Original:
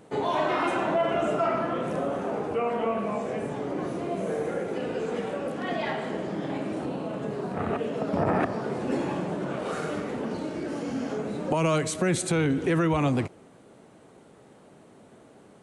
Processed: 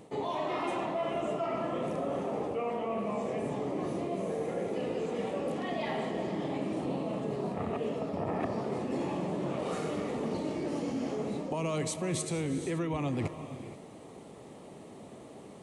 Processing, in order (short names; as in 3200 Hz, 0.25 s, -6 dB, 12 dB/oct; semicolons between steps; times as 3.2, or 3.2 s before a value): bell 1500 Hz -13 dB 0.26 oct; reverse; compressor 6:1, threshold -35 dBFS, peak gain reduction 13.5 dB; reverse; reverb, pre-delay 97 ms, DRR 10.5 dB; gain +4 dB